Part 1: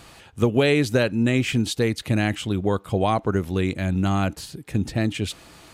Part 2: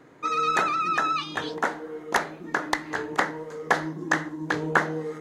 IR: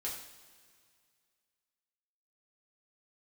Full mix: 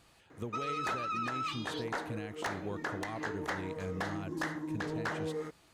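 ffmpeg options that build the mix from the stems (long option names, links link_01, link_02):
-filter_complex "[0:a]volume=-16.5dB[link_01];[1:a]asoftclip=type=tanh:threshold=-20dB,adelay=300,volume=-3.5dB[link_02];[link_01][link_02]amix=inputs=2:normalize=0,alimiter=level_in=4dB:limit=-24dB:level=0:latency=1:release=201,volume=-4dB"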